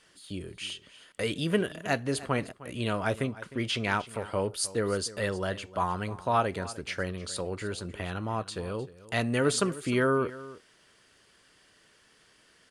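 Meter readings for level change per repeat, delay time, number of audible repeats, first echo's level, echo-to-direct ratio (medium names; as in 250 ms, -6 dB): no regular repeats, 307 ms, 1, -17.5 dB, -17.5 dB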